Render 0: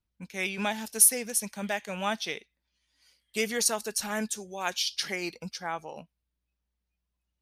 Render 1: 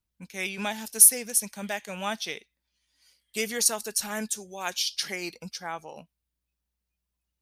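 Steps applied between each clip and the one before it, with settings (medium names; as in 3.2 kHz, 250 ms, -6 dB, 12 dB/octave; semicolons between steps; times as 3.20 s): treble shelf 5.5 kHz +7 dB; trim -1.5 dB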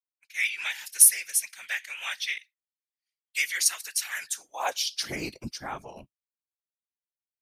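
high-pass sweep 2 kHz -> 110 Hz, 4.23–5.37 s; whisper effect; expander -42 dBFS; trim -1 dB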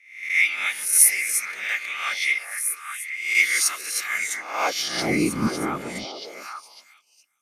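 reverse spectral sustain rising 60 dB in 0.59 s; small resonant body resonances 200/290/1200/2100 Hz, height 14 dB, ringing for 25 ms; on a send: repeats whose band climbs or falls 412 ms, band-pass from 530 Hz, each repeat 1.4 oct, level -2 dB; on the sum: trim -1.5 dB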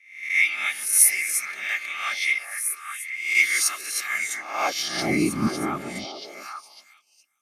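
comb of notches 490 Hz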